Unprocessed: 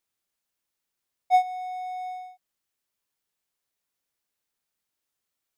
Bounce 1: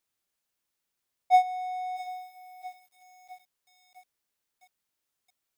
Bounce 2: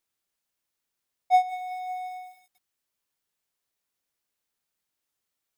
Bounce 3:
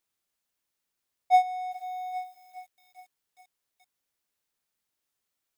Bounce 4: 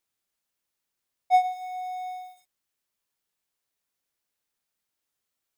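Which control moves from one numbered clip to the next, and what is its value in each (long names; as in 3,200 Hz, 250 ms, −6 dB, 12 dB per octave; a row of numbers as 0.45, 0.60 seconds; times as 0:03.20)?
feedback echo at a low word length, delay time: 657, 187, 411, 109 milliseconds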